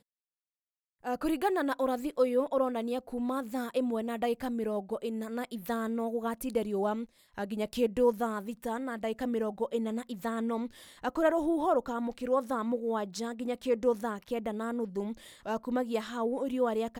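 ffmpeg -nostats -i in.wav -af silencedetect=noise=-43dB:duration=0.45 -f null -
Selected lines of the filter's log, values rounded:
silence_start: 0.00
silence_end: 1.04 | silence_duration: 1.04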